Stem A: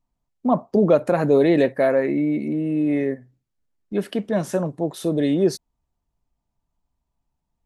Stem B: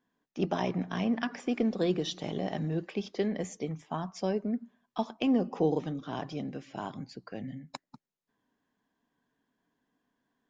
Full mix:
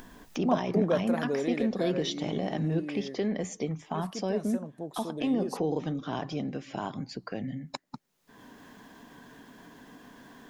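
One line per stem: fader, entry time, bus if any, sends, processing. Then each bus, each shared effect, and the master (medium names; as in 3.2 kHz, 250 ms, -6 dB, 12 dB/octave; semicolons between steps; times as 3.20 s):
-3.0 dB, 0.00 s, no send, treble shelf 5.2 kHz +9 dB; auto duck -14 dB, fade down 1.65 s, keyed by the second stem
+3.0 dB, 0.00 s, no send, peak limiter -23.5 dBFS, peak gain reduction 7.5 dB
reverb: none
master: upward compressor, threshold -30 dBFS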